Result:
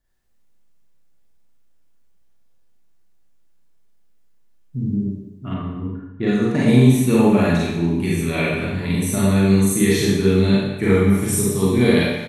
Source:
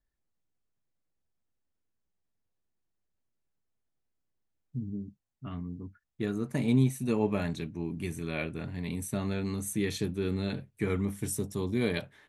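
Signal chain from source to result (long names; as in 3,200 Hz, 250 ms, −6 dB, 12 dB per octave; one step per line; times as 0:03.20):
far-end echo of a speakerphone 170 ms, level −13 dB
four-comb reverb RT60 0.9 s, combs from 32 ms, DRR −6 dB
0:05.54–0:06.81: low-pass that shuts in the quiet parts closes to 2,000 Hz, open at −17.5 dBFS
level +7.5 dB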